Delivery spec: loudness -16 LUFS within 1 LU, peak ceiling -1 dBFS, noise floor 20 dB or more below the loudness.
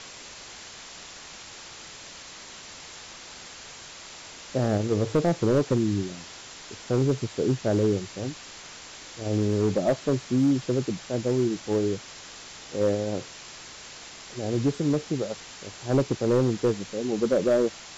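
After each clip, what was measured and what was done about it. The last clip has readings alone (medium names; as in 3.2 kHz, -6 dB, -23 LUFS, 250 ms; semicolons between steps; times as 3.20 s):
clipped samples 0.7%; clipping level -16.0 dBFS; noise floor -44 dBFS; noise floor target -46 dBFS; loudness -26.0 LUFS; peak level -16.0 dBFS; loudness target -16.0 LUFS
-> clip repair -16 dBFS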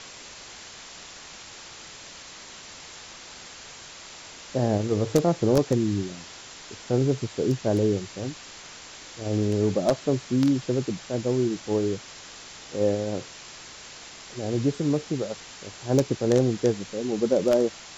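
clipped samples 0.0%; noise floor -44 dBFS; noise floor target -46 dBFS
-> noise reduction 6 dB, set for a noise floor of -44 dBFS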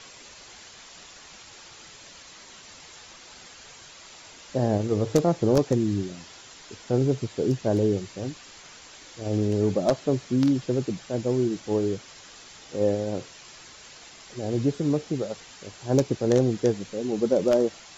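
noise floor -48 dBFS; loudness -25.5 LUFS; peak level -7.0 dBFS; loudness target -16.0 LUFS
-> trim +9.5 dB; peak limiter -1 dBFS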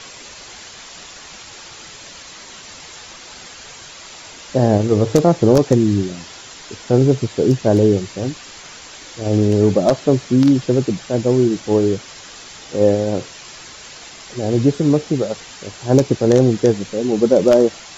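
loudness -16.5 LUFS; peak level -1.0 dBFS; noise floor -38 dBFS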